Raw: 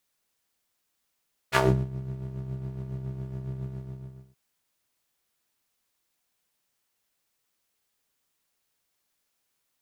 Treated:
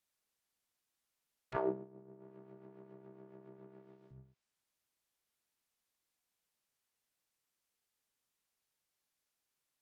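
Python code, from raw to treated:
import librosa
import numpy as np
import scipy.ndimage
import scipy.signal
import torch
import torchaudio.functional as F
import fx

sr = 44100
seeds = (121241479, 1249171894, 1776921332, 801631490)

y = fx.highpass(x, sr, hz=250.0, slope=24, at=(1.56, 4.11))
y = fx.env_lowpass_down(y, sr, base_hz=860.0, full_db=-41.5)
y = y * librosa.db_to_amplitude(-8.5)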